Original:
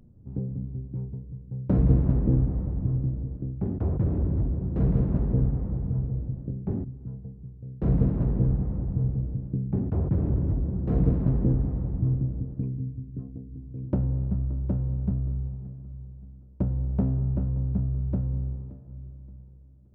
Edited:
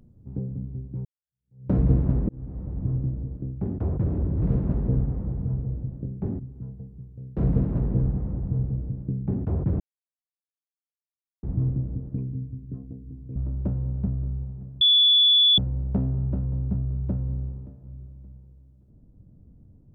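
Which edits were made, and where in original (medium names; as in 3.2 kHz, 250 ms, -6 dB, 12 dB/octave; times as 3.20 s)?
1.05–1.68 s: fade in exponential
2.29–2.89 s: fade in linear
4.42–4.87 s: delete
10.25–11.88 s: mute
13.81–14.40 s: delete
15.85–16.62 s: bleep 3.44 kHz -14 dBFS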